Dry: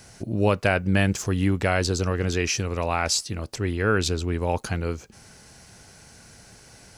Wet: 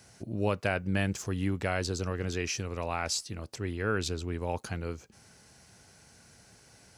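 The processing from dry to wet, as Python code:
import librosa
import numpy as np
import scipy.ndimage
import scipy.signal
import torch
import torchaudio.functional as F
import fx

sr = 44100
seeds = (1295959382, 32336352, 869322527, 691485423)

y = scipy.signal.sosfilt(scipy.signal.butter(2, 55.0, 'highpass', fs=sr, output='sos'), x)
y = y * 10.0 ** (-8.0 / 20.0)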